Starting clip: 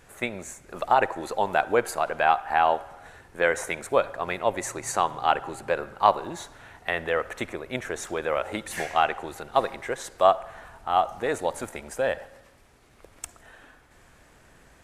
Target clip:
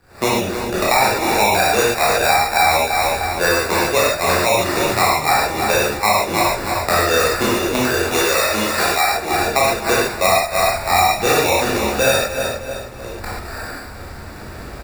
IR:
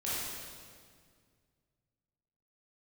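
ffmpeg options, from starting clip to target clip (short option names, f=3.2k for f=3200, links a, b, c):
-filter_complex "[0:a]aemphasis=mode=reproduction:type=75kf,aecho=1:1:307|614|921:0.2|0.0698|0.0244,acrusher=samples=14:mix=1:aa=0.000001,asettb=1/sr,asplit=3[a][b][c];[a]atrim=end=8.114[d];[b]atrim=start=8.11:end=9.03,asetpts=PTS-STARTPTS,afade=t=in:d=0.004:c=qsin,afade=t=out:st=0.916:d=0.004:c=qsin,tiltshelf=f=660:g=-6[e];[c]atrim=start=9.026[f];[d][e]acrossfade=d=0.004:c1=hsin:c2=qsin[g];[g][f]acrossfade=d=0.004:c1=qsin:c2=hsin,dynaudnorm=f=110:g=3:m=15.5dB[h];[1:a]atrim=start_sample=2205,atrim=end_sample=6615[i];[h][i]afir=irnorm=-1:irlink=0,acrossover=split=220|940[j][k][l];[j]acompressor=threshold=-30dB:ratio=4[m];[k]acompressor=threshold=-22dB:ratio=4[n];[l]acompressor=threshold=-19dB:ratio=4[o];[m][n][o]amix=inputs=3:normalize=0,volume=3dB"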